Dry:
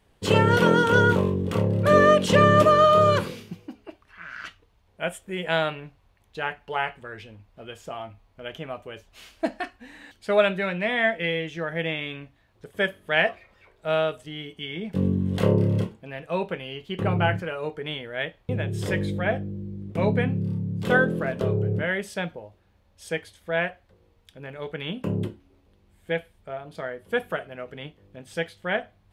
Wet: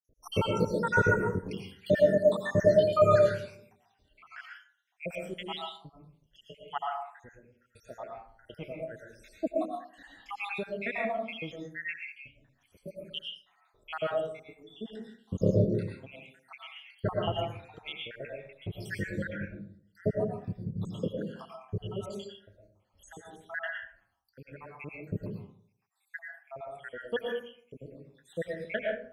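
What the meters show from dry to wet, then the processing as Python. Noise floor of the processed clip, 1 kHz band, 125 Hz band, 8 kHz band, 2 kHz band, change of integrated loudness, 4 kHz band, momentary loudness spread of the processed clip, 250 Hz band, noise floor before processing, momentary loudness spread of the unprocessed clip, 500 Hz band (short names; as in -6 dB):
-73 dBFS, -11.0 dB, -9.0 dB, n/a, -10.0 dB, -7.5 dB, -9.5 dB, 23 LU, -9.0 dB, -63 dBFS, 21 LU, -5.5 dB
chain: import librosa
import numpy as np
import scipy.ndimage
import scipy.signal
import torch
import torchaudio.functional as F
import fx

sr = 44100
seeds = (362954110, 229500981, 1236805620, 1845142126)

y = fx.spec_dropout(x, sr, seeds[0], share_pct=84)
y = fx.rev_freeverb(y, sr, rt60_s=0.58, hf_ratio=0.45, predelay_ms=70, drr_db=-1.0)
y = y * 10.0 ** (-4.5 / 20.0)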